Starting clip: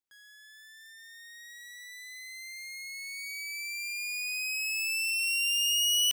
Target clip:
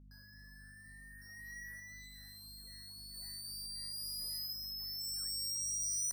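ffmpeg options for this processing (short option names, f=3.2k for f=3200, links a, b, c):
-filter_complex "[0:a]asettb=1/sr,asplit=3[a][b][c];[a]atrim=end=1.214[d];[b]atrim=start=1.21:end=1.8,asetpts=PTS-STARTPTS,afade=t=in:d=0.004:c=qsin,afade=t=out:st=0.586:d=0.004:c=qsin,aecho=1:1:6.3:0.88,atrim=end_sample=26019[e];[c]atrim=start=1.796[f];[d][e]acrossfade=d=0.004:c1=hsin:c2=qsin[g];[g][f]acrossfade=d=0.004:c1=qsin:c2=hsin,asettb=1/sr,asplit=3[h][i][j];[h]atrim=end=3.144[k];[i]atrim=start=3.14:end=4.53,asetpts=PTS-STARTPTS,afade=t=in:d=0.004:c=qsin,afade=t=out:st=1.386:d=0.004:c=qsin,highshelf=f=4.5k:g=6[l];[j]atrim=start=4.526[m];[k][l]acrossfade=d=0.004:c1=hsin:c2=qsin[n];[n][m]acrossfade=d=0.004:c1=qsin:c2=hsin,acrusher=bits=8:mix=0:aa=0.000001,aeval=exprs='val(0)+0.00251*(sin(2*PI*50*n/s)+sin(2*PI*2*50*n/s)/2+sin(2*PI*3*50*n/s)/3+sin(2*PI*4*50*n/s)/4+sin(2*PI*5*50*n/s)/5)':c=same,flanger=delay=4.8:depth=5.4:regen=-71:speed=1.9:shape=sinusoidal,afftfilt=real='re*eq(mod(floor(b*sr/1024/2000),2),0)':imag='im*eq(mod(floor(b*sr/1024/2000),2),0)':win_size=1024:overlap=0.75"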